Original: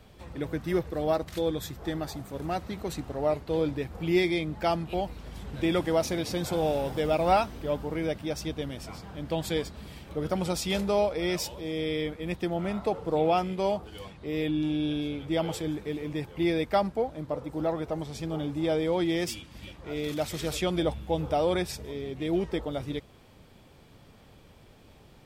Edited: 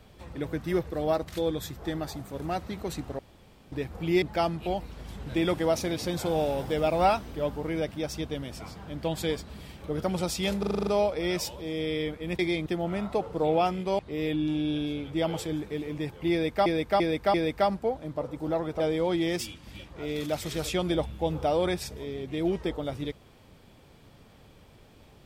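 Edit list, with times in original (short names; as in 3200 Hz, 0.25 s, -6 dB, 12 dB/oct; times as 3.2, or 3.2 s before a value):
3.19–3.72 room tone
4.22–4.49 move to 12.38
10.86 stutter 0.04 s, 8 plays
13.71–14.14 cut
16.47–16.81 loop, 4 plays
17.93–18.68 cut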